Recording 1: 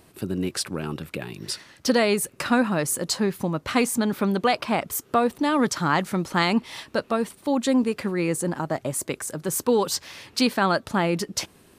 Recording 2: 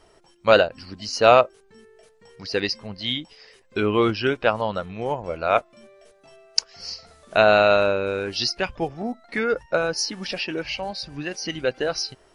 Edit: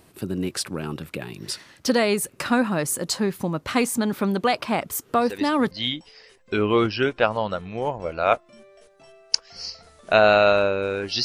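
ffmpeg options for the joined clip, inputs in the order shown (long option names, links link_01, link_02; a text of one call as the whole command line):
ffmpeg -i cue0.wav -i cue1.wav -filter_complex "[1:a]asplit=2[link_01][link_02];[0:a]apad=whole_dur=11.24,atrim=end=11.24,atrim=end=5.712[link_03];[link_02]atrim=start=2.948:end=8.48[link_04];[link_01]atrim=start=2.32:end=2.95,asetpts=PTS-STARTPTS,volume=-11dB,afade=type=in:duration=0.004:curve=hsin,afade=type=out:start_time=0.626:duration=0.004:curve=hsin,adelay=5080[link_05];[link_03][link_04]acrossfade=duration=0.004:curve1=hsin:curve2=hsin[link_06];[link_06][link_05]amix=inputs=2:normalize=0" out.wav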